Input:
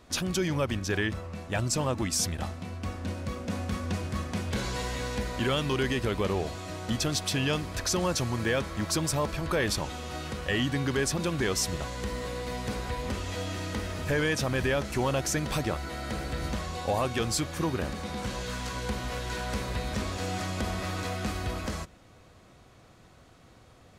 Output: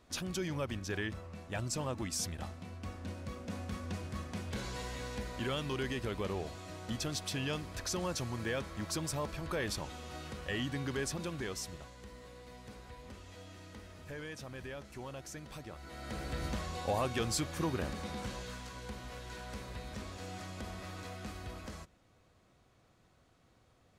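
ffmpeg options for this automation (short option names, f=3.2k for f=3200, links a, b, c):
-af "volume=4dB,afade=t=out:st=11.06:d=0.9:silence=0.354813,afade=t=in:st=15.72:d=0.63:silence=0.237137,afade=t=out:st=18.03:d=0.65:silence=0.446684"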